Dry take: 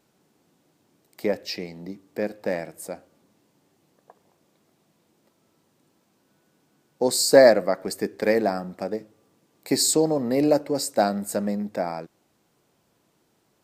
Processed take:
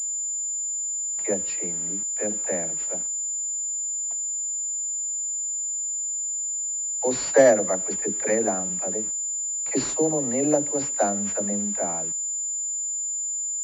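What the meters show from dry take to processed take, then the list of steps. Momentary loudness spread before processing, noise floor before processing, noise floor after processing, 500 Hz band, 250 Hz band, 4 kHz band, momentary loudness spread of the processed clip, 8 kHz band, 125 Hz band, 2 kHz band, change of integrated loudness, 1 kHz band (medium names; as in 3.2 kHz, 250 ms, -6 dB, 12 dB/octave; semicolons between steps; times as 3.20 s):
19 LU, -68 dBFS, -29 dBFS, -2.5 dB, -2.5 dB, -12.5 dB, 4 LU, +12.0 dB, -2.5 dB, -3.0 dB, -1.0 dB, -2.5 dB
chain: phase dispersion lows, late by 76 ms, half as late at 360 Hz; word length cut 8-bit, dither none; class-D stage that switches slowly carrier 7.1 kHz; trim -2.5 dB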